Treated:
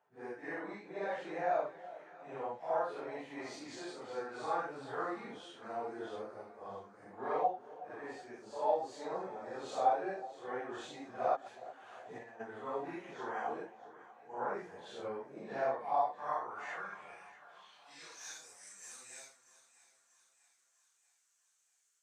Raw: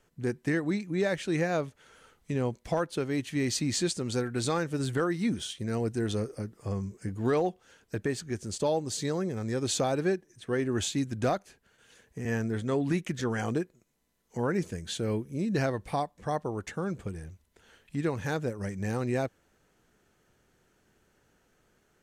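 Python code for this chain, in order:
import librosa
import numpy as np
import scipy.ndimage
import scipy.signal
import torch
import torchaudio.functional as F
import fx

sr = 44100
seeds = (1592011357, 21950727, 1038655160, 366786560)

y = fx.phase_scramble(x, sr, seeds[0], window_ms=200)
y = fx.filter_sweep_bandpass(y, sr, from_hz=800.0, to_hz=7500.0, start_s=15.97, end_s=18.49, q=2.5)
y = fx.over_compress(y, sr, threshold_db=-56.0, ratio=-1.0, at=(11.35, 12.39), fade=0.02)
y = fx.low_shelf(y, sr, hz=440.0, db=-10.0)
y = fx.echo_split(y, sr, split_hz=910.0, low_ms=370, high_ms=639, feedback_pct=52, wet_db=-16)
y = y * 10.0 ** (5.0 / 20.0)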